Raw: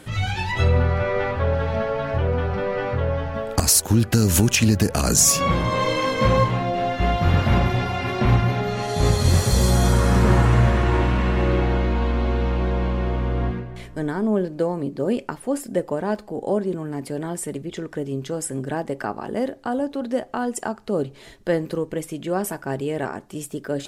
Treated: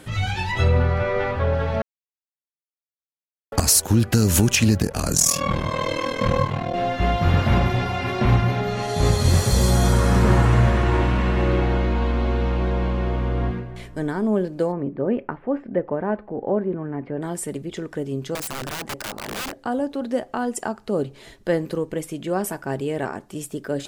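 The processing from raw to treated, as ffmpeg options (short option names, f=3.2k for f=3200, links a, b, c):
-filter_complex "[0:a]asettb=1/sr,asplit=3[a][b][c];[a]atrim=end=4.784[d];[b]atrim=start=4.78:end=6.74,asetpts=PTS-STARTPTS,afade=t=in:d=0.004:c=qsin,afade=t=out:st=1.956:d=0.004:c=qsin,aeval=exprs='val(0)*sin(2*PI*20*n/s)':c=same[e];[c]atrim=start=6.736[f];[d][e]acrossfade=d=0.004:c1=hsin:c2=qsin[g];[g][f]acrossfade=d=0.004:c1=qsin:c2=hsin,asplit=3[h][i][j];[h]afade=t=out:st=14.71:d=0.02[k];[i]lowpass=f=2.2k:w=0.5412,lowpass=f=2.2k:w=1.3066,afade=t=in:st=14.71:d=0.02,afade=t=out:st=17.21:d=0.02[l];[j]afade=t=in:st=17.21:d=0.02[m];[k][l][m]amix=inputs=3:normalize=0,asettb=1/sr,asplit=3[n][o][p];[n]atrim=end=18.354[q];[o]atrim=start=18.35:end=19.6,asetpts=PTS-STARTPTS,afade=t=in:d=0.004:c=qsin,afade=t=out:st=1.246:d=0.004:c=qsin,aeval=exprs='(mod(15.8*val(0)+1,2)-1)/15.8':c=same[r];[p]atrim=start=19.596[s];[q][r]acrossfade=d=0.004:c1=hsin:c2=qsin[t];[t][s]acrossfade=d=0.004:c1=qsin:c2=hsin,asplit=3[u][v][w];[u]atrim=end=1.82,asetpts=PTS-STARTPTS,afade=t=out:st=1.816:d=0.004:c=hsin[x];[v]atrim=start=1.82:end=3.52,asetpts=PTS-STARTPTS,volume=0[y];[w]atrim=start=3.52,asetpts=PTS-STARTPTS,afade=t=in:d=0.004:c=hsin[z];[x][y][z]concat=n=3:v=0:a=1"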